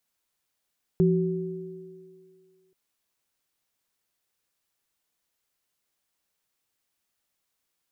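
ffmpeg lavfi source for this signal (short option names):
-f lavfi -i "aevalsrc='0.133*pow(10,-3*t/1.74)*sin(2*PI*172*t)+0.1*pow(10,-3*t/2.31)*sin(2*PI*376*t)':d=1.73:s=44100"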